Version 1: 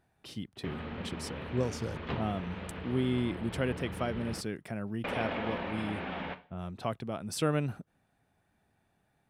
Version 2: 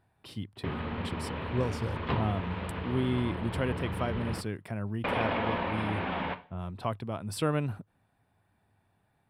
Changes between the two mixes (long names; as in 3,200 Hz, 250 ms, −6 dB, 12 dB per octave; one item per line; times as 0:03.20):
background +4.0 dB
master: add thirty-one-band graphic EQ 100 Hz +9 dB, 1,000 Hz +6 dB, 6,300 Hz −10 dB